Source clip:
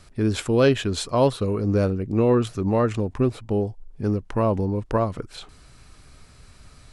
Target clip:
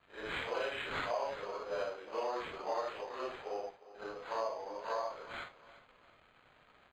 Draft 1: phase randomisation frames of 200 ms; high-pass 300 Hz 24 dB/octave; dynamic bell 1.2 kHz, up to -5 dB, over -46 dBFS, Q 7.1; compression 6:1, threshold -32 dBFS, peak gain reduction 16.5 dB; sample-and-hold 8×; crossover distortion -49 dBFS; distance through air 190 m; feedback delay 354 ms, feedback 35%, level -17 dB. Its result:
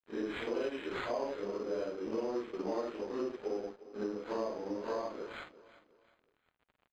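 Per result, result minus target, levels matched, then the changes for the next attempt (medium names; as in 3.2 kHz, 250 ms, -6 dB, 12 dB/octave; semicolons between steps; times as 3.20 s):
250 Hz band +11.5 dB; crossover distortion: distortion +5 dB
change: high-pass 630 Hz 24 dB/octave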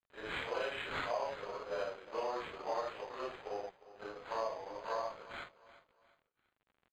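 crossover distortion: distortion +8 dB
change: crossover distortion -58 dBFS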